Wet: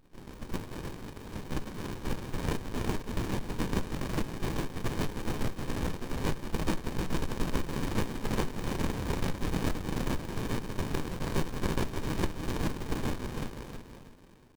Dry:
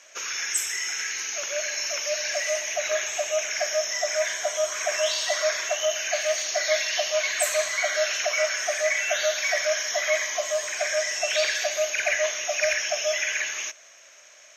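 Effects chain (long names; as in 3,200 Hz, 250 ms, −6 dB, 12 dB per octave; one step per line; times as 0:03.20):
gate on every frequency bin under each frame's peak −20 dB weak
low-shelf EQ 500 Hz −11.5 dB
in parallel at +0.5 dB: downward compressor, threshold −34 dBFS, peak gain reduction 7.5 dB
on the sum: pitch shifter +1.5 semitones
on a send: feedback echo with a high-pass in the loop 326 ms, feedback 38%, high-pass 1,100 Hz, level −4.5 dB
on the sum: windowed peak hold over 65 samples
level +4.5 dB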